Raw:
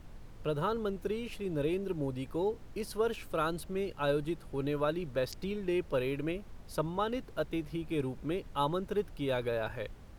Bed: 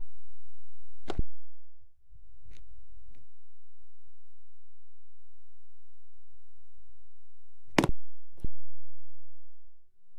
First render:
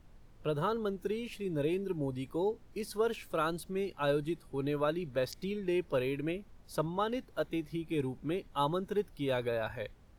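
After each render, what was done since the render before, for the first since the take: noise print and reduce 8 dB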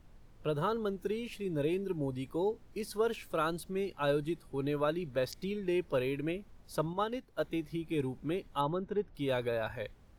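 6.93–7.39 s: upward expansion, over -42 dBFS; 8.61–9.15 s: tape spacing loss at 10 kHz 24 dB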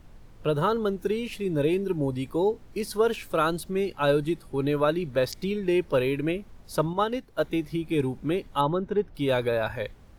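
trim +8 dB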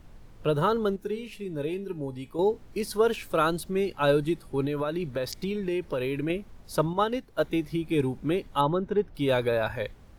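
0.96–2.39 s: feedback comb 210 Hz, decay 0.35 s; 4.65–6.30 s: compression, threshold -25 dBFS

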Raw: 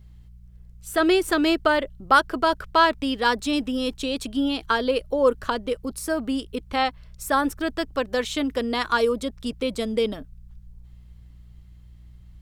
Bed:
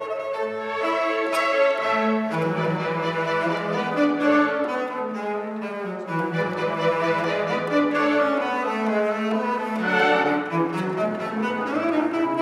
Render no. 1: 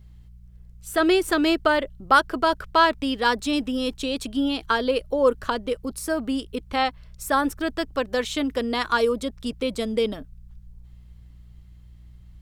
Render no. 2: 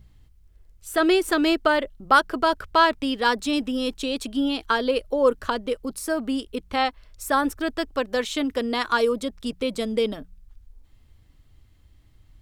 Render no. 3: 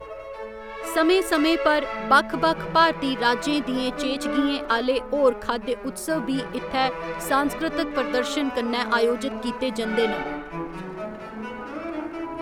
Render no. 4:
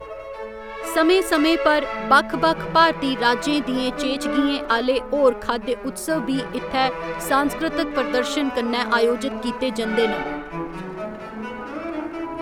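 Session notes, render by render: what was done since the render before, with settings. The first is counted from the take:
no audible change
de-hum 60 Hz, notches 3
add bed -9 dB
trim +2.5 dB; peak limiter -3 dBFS, peak gain reduction 1 dB

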